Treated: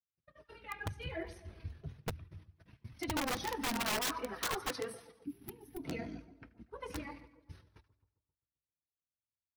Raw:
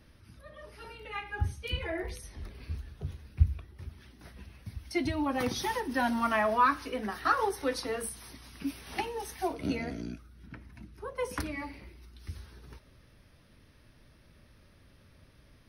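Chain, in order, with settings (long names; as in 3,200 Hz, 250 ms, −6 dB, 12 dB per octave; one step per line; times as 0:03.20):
noise gate −47 dBFS, range −44 dB
high-pass filter 44 Hz 24 dB per octave
high-shelf EQ 6,800 Hz −11 dB
echo with a time of its own for lows and highs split 1,100 Hz, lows 217 ms, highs 129 ms, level −16 dB
multi-voice chorus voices 4, 0.22 Hz, delay 10 ms, depth 4.1 ms
wrap-around overflow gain 26 dB
gain on a spectral selection 0:08.61–0:09.57, 420–9,800 Hz −18 dB
time stretch by overlap-add 0.61×, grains 48 ms
level −1.5 dB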